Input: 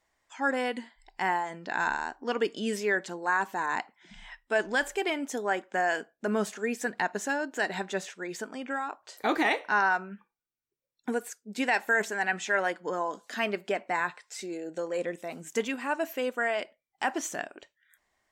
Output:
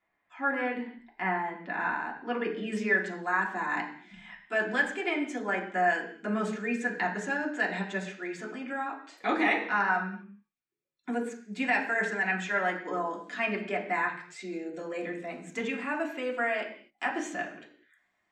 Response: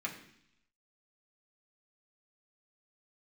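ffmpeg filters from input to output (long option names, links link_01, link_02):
-filter_complex "[0:a]asetnsamples=nb_out_samples=441:pad=0,asendcmd='2.72 lowpass f 6200',lowpass=2600[link_01];[1:a]atrim=start_sample=2205,afade=type=out:start_time=0.32:duration=0.01,atrim=end_sample=14553[link_02];[link_01][link_02]afir=irnorm=-1:irlink=0,volume=-2dB"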